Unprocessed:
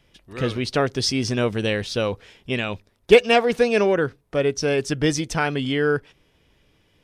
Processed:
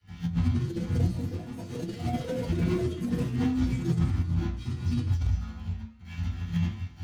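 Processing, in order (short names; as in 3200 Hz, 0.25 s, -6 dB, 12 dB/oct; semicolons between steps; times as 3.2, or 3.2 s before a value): infinite clipping; frequency shift -220 Hz; dynamic EQ 100 Hz, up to -3 dB, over -37 dBFS, Q 7; resonator 85 Hz, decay 0.61 s, harmonics all, mix 90%; sample leveller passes 2; high shelf 7100 Hz -2 dB; gate -23 dBFS, range -51 dB; reverb RT60 0.40 s, pre-delay 3 ms, DRR -11.5 dB; negative-ratio compressor -26 dBFS, ratio -1; echoes that change speed 0.29 s, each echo +6 st, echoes 3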